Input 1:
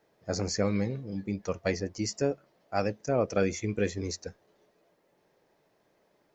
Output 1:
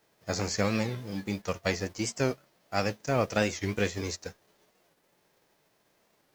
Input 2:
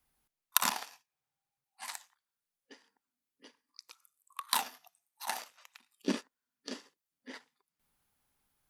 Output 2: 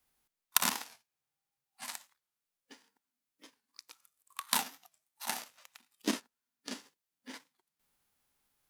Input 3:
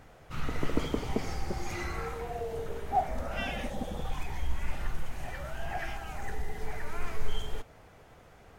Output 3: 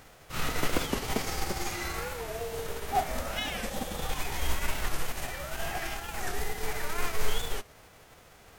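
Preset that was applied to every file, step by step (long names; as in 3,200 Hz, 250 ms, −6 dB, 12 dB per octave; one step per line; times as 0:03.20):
spectral envelope flattened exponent 0.6
wow of a warped record 45 rpm, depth 160 cents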